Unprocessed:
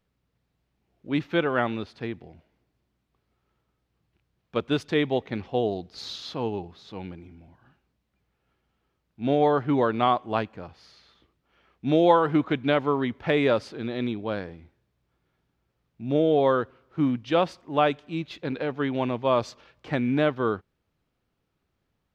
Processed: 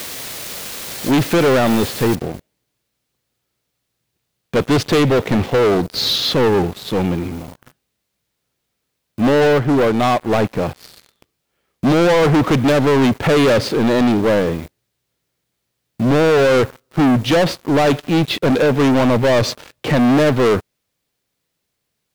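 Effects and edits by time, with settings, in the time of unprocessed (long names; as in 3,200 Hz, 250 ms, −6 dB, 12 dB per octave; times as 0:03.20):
0:02.15: noise floor change −46 dB −66 dB
0:09.22–0:10.52: duck −8.5 dB, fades 0.41 s
whole clip: brickwall limiter −16 dBFS; octave-band graphic EQ 125/250/500/2,000/4,000 Hz +7/+4/+7/+3/+4 dB; leveller curve on the samples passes 5; level −1.5 dB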